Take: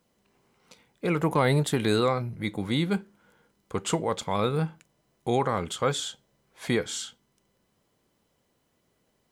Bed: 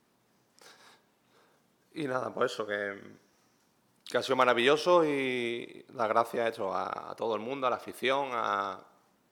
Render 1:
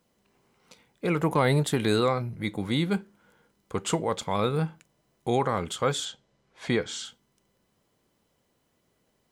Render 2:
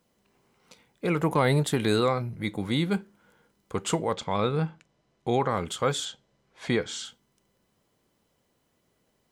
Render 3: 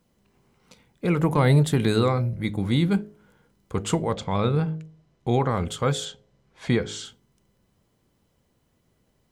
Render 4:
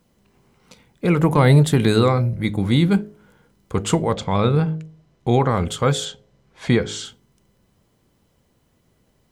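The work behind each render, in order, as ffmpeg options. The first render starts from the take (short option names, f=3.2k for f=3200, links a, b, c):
-filter_complex "[0:a]asettb=1/sr,asplit=3[a][b][c];[a]atrim=end=6.054[d];[b]atrim=start=6.05:end=7.05,asetpts=PTS-STARTPTS,afade=t=in:d=0.004:c=qsin,afade=t=out:st=0.996:d=0.004:c=qsin,lowpass=6.4k[e];[c]atrim=start=7.046[f];[d][e]acrossfade=d=0.004:c1=hsin:c2=qsin[g];[g][f]acrossfade=d=0.004:c1=qsin:c2=hsin"
-filter_complex "[0:a]asettb=1/sr,asplit=3[a][b][c];[a]atrim=end=4.134[d];[b]atrim=start=4.13:end=5.51,asetpts=PTS-STARTPTS,afade=t=in:d=0.004:c=qsin,afade=t=out:st=1.376:d=0.004:c=qsin,lowpass=5.8k[e];[c]atrim=start=5.506[f];[d][e]acrossfade=d=0.004:c1=hsin:c2=qsin[g];[g][f]acrossfade=d=0.004:c1=qsin:c2=hsin"
-af "lowshelf=f=190:g=12,bandreject=f=52.55:t=h:w=4,bandreject=f=105.1:t=h:w=4,bandreject=f=157.65:t=h:w=4,bandreject=f=210.2:t=h:w=4,bandreject=f=262.75:t=h:w=4,bandreject=f=315.3:t=h:w=4,bandreject=f=367.85:t=h:w=4,bandreject=f=420.4:t=h:w=4,bandreject=f=472.95:t=h:w=4,bandreject=f=525.5:t=h:w=4,bandreject=f=578.05:t=h:w=4,bandreject=f=630.6:t=h:w=4,bandreject=f=683.15:t=h:w=4,bandreject=f=735.7:t=h:w=4"
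-af "volume=5dB"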